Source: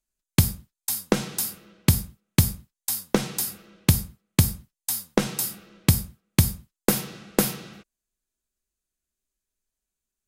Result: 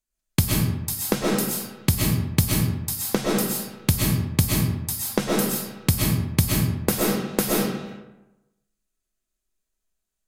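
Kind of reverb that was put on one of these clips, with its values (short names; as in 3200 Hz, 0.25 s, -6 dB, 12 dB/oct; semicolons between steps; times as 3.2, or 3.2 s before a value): digital reverb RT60 1 s, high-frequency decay 0.55×, pre-delay 85 ms, DRR -4 dB; gain -2 dB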